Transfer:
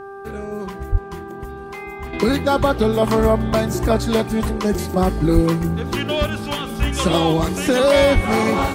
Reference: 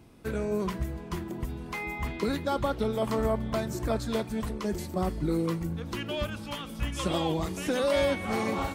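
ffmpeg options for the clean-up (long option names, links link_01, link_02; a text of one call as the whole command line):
ffmpeg -i in.wav -filter_complex "[0:a]bandreject=frequency=395:width_type=h:width=4,bandreject=frequency=790:width_type=h:width=4,bandreject=frequency=1185:width_type=h:width=4,bandreject=frequency=1580:width_type=h:width=4,asplit=3[link_01][link_02][link_03];[link_01]afade=type=out:start_time=0.91:duration=0.02[link_04];[link_02]highpass=frequency=140:width=0.5412,highpass=frequency=140:width=1.3066,afade=type=in:start_time=0.91:duration=0.02,afade=type=out:start_time=1.03:duration=0.02[link_05];[link_03]afade=type=in:start_time=1.03:duration=0.02[link_06];[link_04][link_05][link_06]amix=inputs=3:normalize=0,asplit=3[link_07][link_08][link_09];[link_07]afade=type=out:start_time=5.34:duration=0.02[link_10];[link_08]highpass=frequency=140:width=0.5412,highpass=frequency=140:width=1.3066,afade=type=in:start_time=5.34:duration=0.02,afade=type=out:start_time=5.46:duration=0.02[link_11];[link_09]afade=type=in:start_time=5.46:duration=0.02[link_12];[link_10][link_11][link_12]amix=inputs=3:normalize=0,asplit=3[link_13][link_14][link_15];[link_13]afade=type=out:start_time=8.14:duration=0.02[link_16];[link_14]highpass=frequency=140:width=0.5412,highpass=frequency=140:width=1.3066,afade=type=in:start_time=8.14:duration=0.02,afade=type=out:start_time=8.26:duration=0.02[link_17];[link_15]afade=type=in:start_time=8.26:duration=0.02[link_18];[link_16][link_17][link_18]amix=inputs=3:normalize=0,asetnsamples=nb_out_samples=441:pad=0,asendcmd='2.13 volume volume -11.5dB',volume=0dB" out.wav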